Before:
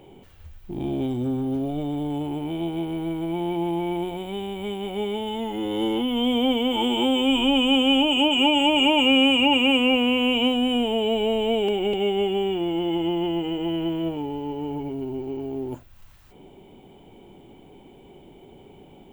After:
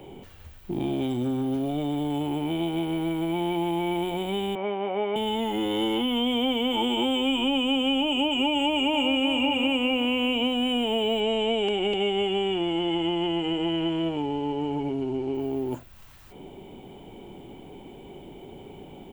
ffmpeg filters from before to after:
-filter_complex "[0:a]asettb=1/sr,asplit=3[a][b][c];[a]atrim=end=4.554[d];[b]atrim=start=4.55:end=5.16,asetpts=PTS-STARTPTS,afade=t=in:d=0.004:c=qsin,afade=t=out:st=0.606:d=0.004:c=qsin,highpass=300,equalizer=f=330:t=q:w=4:g=-5,equalizer=f=610:t=q:w=4:g=8,equalizer=f=1.1k:t=q:w=4:g=6,lowpass=f=2.3k:w=0.5412,lowpass=f=2.3k:w=1.3066[e];[c]atrim=start=5.156[f];[d][e]acrossfade=d=0.004:c1=hsin:c2=qsin[g];[g][f]acrossfade=d=0.004:c1=qsin:c2=hsin,asplit=2[h][i];[i]afade=t=in:st=8.55:d=0.01,afade=t=out:st=9.29:d=0.01,aecho=0:1:380|760|1140|1520|1900:0.446684|0.178673|0.0714694|0.0285877|0.0114351[j];[h][j]amix=inputs=2:normalize=0,asettb=1/sr,asplit=3[k][l][m];[k]atrim=end=11.204[n];[l]atrim=start=11.2:end=15.35,asetpts=PTS-STARTPTS,afade=t=in:d=0.004:c=qsin,afade=t=out:st=4.146:d=0.004:c=qsin,lowpass=f=8.6k:w=0.5412,lowpass=f=8.6k:w=1.3066[o];[m]atrim=start=15.346[p];[n][o]acrossfade=d=0.004:c1=hsin:c2=qsin[q];[q][p]acrossfade=d=0.004:c1=qsin:c2=hsin,acrossover=split=110|1000|3500[r][s][t][u];[r]acompressor=threshold=-54dB:ratio=4[v];[s]acompressor=threshold=-30dB:ratio=4[w];[t]acompressor=threshold=-36dB:ratio=4[x];[u]acompressor=threshold=-45dB:ratio=4[y];[v][w][x][y]amix=inputs=4:normalize=0,volume=4.5dB"

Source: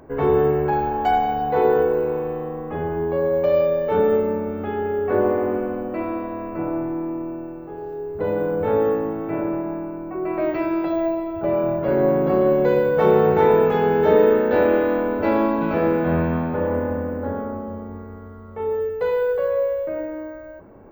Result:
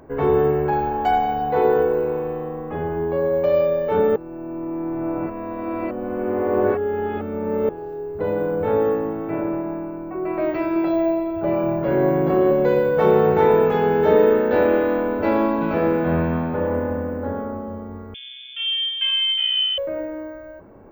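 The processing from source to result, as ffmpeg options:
-filter_complex "[0:a]asettb=1/sr,asplit=3[a][b][c];[a]atrim=end=10.734[d];[b]atrim=start=10.73:end=12.51,asetpts=PTS-STARTPTS,afade=t=in:d=0.004:c=qsin,afade=t=out:st=1.776:d=0.004:c=qsin,asplit=2[e][f];[f]adelay=30,volume=-6dB[g];[e][g]amix=inputs=2:normalize=0,atrim=end_sample=78498[h];[c]atrim=start=12.506[i];[d][h]acrossfade=d=0.004:c1=hsin:c2=qsin[j];[j][i]acrossfade=d=0.004:c1=qsin:c2=hsin,asettb=1/sr,asplit=3[k][l][m];[k]atrim=end=18.144[n];[l]atrim=start=18.14:end=19.78,asetpts=PTS-STARTPTS,afade=t=in:d=0.004:c=qsin,afade=t=out:st=1.636:d=0.004:c=qsin,lowpass=f=3.1k:t=q:w=0.5098,lowpass=f=3.1k:t=q:w=0.6013,lowpass=f=3.1k:t=q:w=0.9,lowpass=f=3.1k:t=q:w=2.563,afreqshift=-3600[o];[m]atrim=start=19.776[p];[n][o]acrossfade=d=0.004:c1=hsin:c2=qsin[q];[q][p]acrossfade=d=0.004:c1=qsin:c2=hsin,asplit=3[r][s][t];[r]atrim=end=4.162[u];[s]atrim=start=4.158:end=7.692,asetpts=PTS-STARTPTS,areverse[v];[t]atrim=start=7.688[w];[u][v]acrossfade=d=0.004:c1=hsin:c2=hsin[x];[x][w]acrossfade=d=0.004:c1=hsin:c2=hsin"

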